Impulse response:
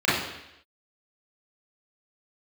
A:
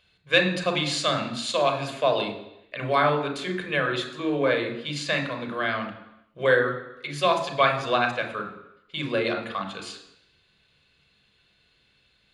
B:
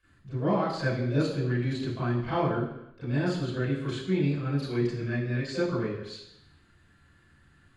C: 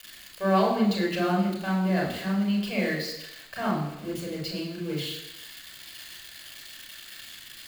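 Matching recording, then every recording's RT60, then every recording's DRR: B; 0.85, 0.85, 0.85 s; 5.0, -11.0, -2.5 dB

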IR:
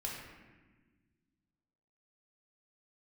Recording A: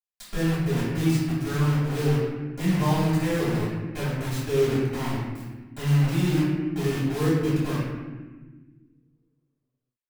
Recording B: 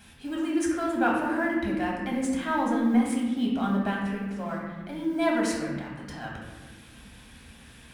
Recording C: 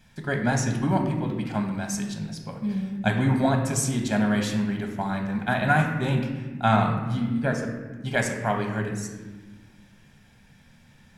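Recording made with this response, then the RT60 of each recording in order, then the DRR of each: B; 1.4, 1.4, 1.4 s; -10.5, -3.0, 2.5 dB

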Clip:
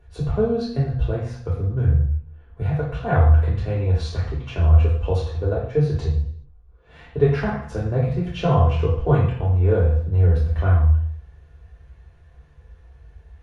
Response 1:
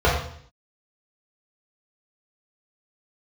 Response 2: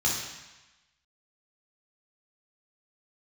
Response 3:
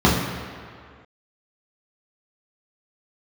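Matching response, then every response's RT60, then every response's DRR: 1; 0.60, 1.1, 2.1 s; -6.5, -5.0, -6.0 dB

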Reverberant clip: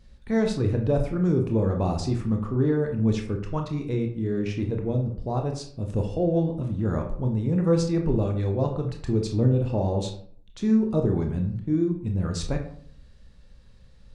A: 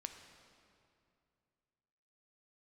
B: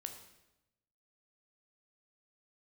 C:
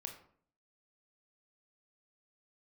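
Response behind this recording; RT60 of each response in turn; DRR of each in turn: C; 2.5, 0.95, 0.55 s; 5.5, 5.0, 3.0 dB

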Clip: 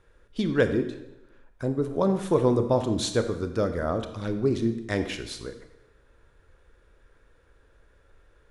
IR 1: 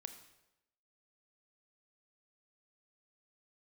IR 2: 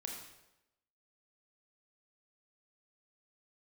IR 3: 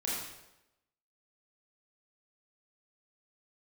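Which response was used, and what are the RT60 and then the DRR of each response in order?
1; 0.95, 0.95, 0.95 s; 8.0, 0.0, -6.5 dB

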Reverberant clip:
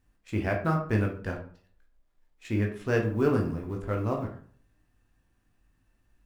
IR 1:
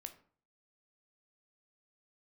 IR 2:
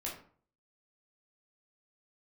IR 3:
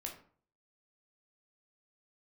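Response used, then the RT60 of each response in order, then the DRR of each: 3; 0.50, 0.50, 0.50 s; 7.0, -4.5, 0.5 dB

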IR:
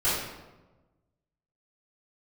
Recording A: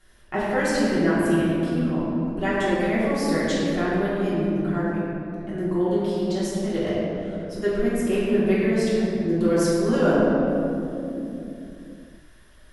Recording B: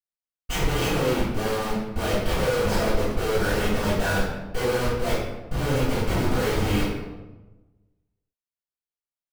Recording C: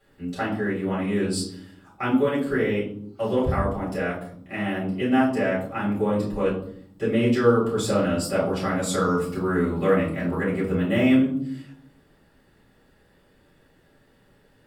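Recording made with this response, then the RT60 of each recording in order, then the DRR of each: B; 3.0, 1.2, 0.65 s; -10.5, -12.5, -9.5 dB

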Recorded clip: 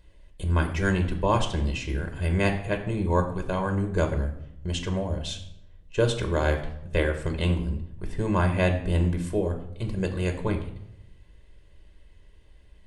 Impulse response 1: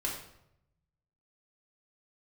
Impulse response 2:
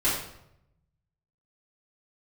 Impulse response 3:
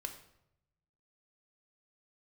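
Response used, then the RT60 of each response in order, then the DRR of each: 3; 0.80, 0.80, 0.80 s; -3.0, -11.0, 5.0 dB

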